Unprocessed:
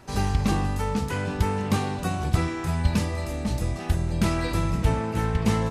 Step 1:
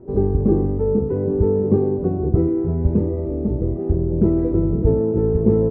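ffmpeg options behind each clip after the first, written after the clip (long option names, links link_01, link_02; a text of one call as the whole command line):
ffmpeg -i in.wav -af "lowpass=frequency=400:width_type=q:width=4.9,volume=3.5dB" out.wav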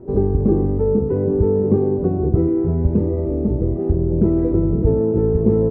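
ffmpeg -i in.wav -af "acompressor=threshold=-20dB:ratio=1.5,volume=3.5dB" out.wav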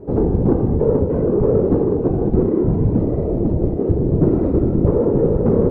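ffmpeg -i in.wav -af "acontrast=75,afftfilt=real='hypot(re,im)*cos(2*PI*random(0))':imag='hypot(re,im)*sin(2*PI*random(1))':win_size=512:overlap=0.75,volume=1.5dB" out.wav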